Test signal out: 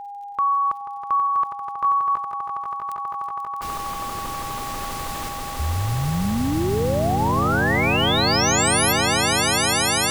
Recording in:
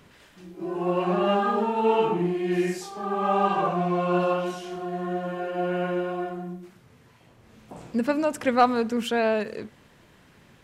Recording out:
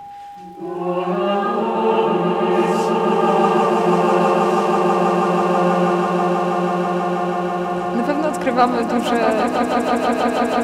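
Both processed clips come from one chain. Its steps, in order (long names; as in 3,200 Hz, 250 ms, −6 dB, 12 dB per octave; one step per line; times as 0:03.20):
steady tone 810 Hz −36 dBFS
echo that builds up and dies away 162 ms, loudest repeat 8, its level −7.5 dB
surface crackle 59 per second −46 dBFS
level +3.5 dB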